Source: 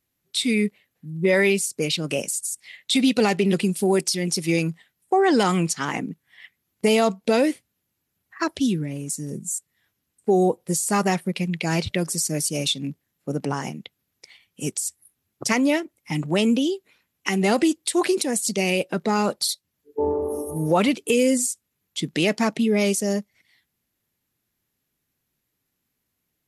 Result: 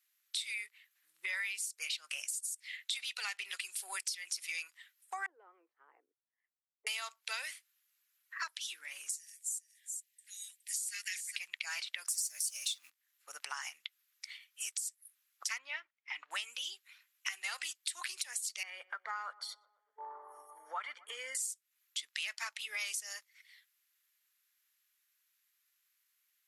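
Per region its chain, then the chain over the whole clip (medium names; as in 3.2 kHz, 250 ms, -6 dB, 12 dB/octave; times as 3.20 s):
5.26–6.87 s: Butterworth band-pass 380 Hz, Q 2 + distance through air 340 m
9.11–11.36 s: steep high-pass 1.8 kHz 48 dB/octave + delay 416 ms -12 dB
12.08–12.90 s: companding laws mixed up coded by mu + tone controls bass +6 dB, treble +10 dB
15.58–16.31 s: gate -51 dBFS, range -9 dB + distance through air 290 m
18.63–21.35 s: Savitzky-Golay filter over 41 samples + filtered feedback delay 122 ms, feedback 72%, low-pass 1 kHz, level -21 dB
whole clip: high-pass 1.3 kHz 24 dB/octave; compression 4:1, threshold -39 dBFS; trim +1 dB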